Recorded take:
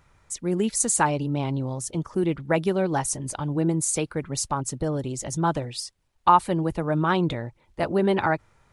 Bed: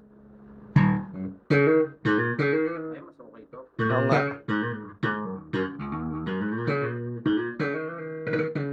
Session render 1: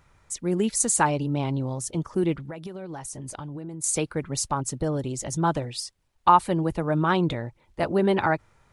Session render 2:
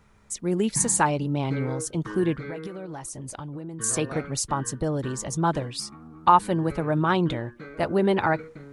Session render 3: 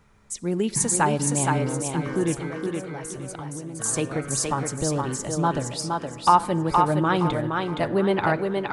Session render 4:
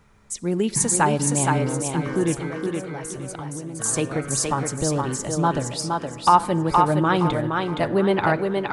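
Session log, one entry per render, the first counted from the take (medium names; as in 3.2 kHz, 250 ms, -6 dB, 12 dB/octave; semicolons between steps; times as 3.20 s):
2.33–3.84 s: compression 20:1, threshold -32 dBFS
add bed -14 dB
thinning echo 468 ms, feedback 31%, high-pass 230 Hz, level -3 dB; simulated room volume 2900 m³, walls mixed, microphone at 0.32 m
trim +2 dB; peak limiter -3 dBFS, peak gain reduction 1.5 dB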